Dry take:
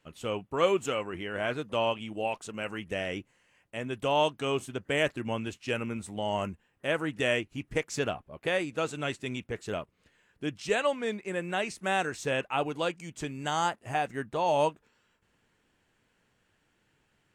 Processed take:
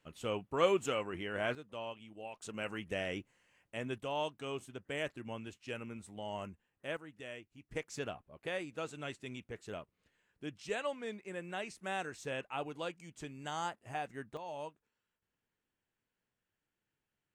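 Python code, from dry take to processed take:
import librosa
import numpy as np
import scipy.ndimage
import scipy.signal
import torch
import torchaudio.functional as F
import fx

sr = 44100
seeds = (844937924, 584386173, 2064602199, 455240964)

y = fx.gain(x, sr, db=fx.steps((0.0, -4.0), (1.55, -15.0), (2.42, -4.5), (3.98, -11.0), (6.97, -19.5), (7.69, -10.0), (14.37, -18.0)))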